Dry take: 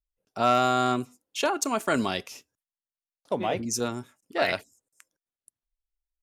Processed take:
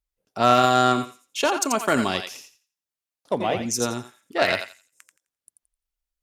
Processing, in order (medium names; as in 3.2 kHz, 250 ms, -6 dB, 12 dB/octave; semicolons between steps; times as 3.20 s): thinning echo 86 ms, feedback 24%, high-pass 1.1 kHz, level -5 dB; Chebyshev shaper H 3 -18 dB, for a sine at -9 dBFS; trim +7 dB